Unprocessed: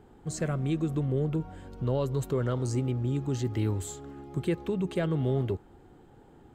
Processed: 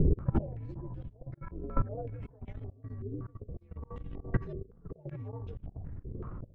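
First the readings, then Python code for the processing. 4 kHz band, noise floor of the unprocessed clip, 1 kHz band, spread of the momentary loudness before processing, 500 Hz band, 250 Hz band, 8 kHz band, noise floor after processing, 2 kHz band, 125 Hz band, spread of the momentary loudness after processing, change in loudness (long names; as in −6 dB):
below −20 dB, −55 dBFS, −5.0 dB, 8 LU, −11.0 dB, −9.0 dB, below −35 dB, −58 dBFS, −9.0 dB, −6.5 dB, 11 LU, −9.0 dB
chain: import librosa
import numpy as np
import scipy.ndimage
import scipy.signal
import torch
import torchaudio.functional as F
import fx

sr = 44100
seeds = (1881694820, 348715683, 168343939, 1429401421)

y = fx.partial_stretch(x, sr, pct=127)
y = fx.dmg_wind(y, sr, seeds[0], corner_hz=120.0, level_db=-34.0)
y = fx.transient(y, sr, attack_db=-3, sustain_db=10)
y = fx.over_compress(y, sr, threshold_db=-37.0, ratio=-0.5)
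y = y * (1.0 - 0.67 / 2.0 + 0.67 / 2.0 * np.cos(2.0 * np.pi * 14.0 * (np.arange(len(y)) / sr)))
y = fx.auto_swell(y, sr, attack_ms=346.0)
y = fx.low_shelf(y, sr, hz=190.0, db=8.5)
y = fx.level_steps(y, sr, step_db=17)
y = fx.filter_held_lowpass(y, sr, hz=5.3, low_hz=400.0, high_hz=3200.0)
y = y * 10.0 ** (11.0 / 20.0)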